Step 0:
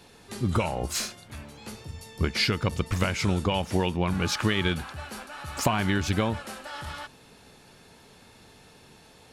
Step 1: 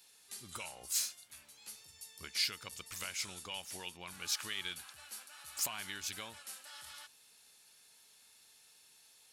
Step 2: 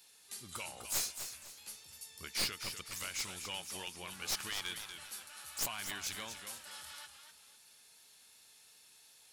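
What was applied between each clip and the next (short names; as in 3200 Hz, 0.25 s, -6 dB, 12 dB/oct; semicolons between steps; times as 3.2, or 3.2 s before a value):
pre-emphasis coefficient 0.97; gain -2 dB
one-sided fold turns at -32.5 dBFS; warbling echo 0.248 s, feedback 32%, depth 106 cents, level -8.5 dB; gain +1 dB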